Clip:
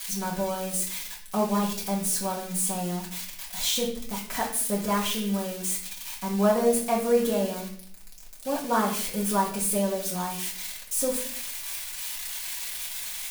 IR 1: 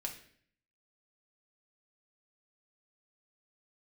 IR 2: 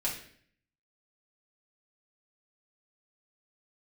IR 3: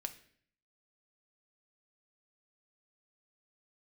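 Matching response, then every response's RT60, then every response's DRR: 2; 0.55, 0.55, 0.55 seconds; 1.5, −5.0, 7.5 decibels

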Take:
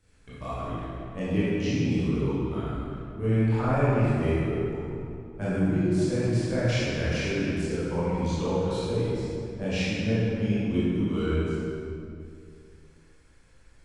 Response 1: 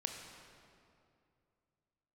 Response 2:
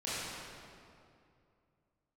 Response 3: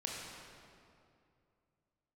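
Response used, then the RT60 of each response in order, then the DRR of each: 2; 2.5, 2.5, 2.5 seconds; 3.0, −11.5, −3.0 decibels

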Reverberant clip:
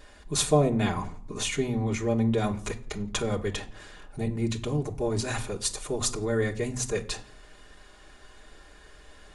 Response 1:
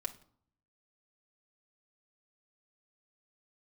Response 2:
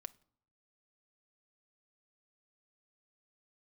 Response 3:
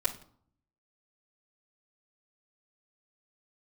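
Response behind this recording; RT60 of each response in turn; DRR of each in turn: 1; non-exponential decay, non-exponential decay, non-exponential decay; −0.5, 9.0, −10.0 decibels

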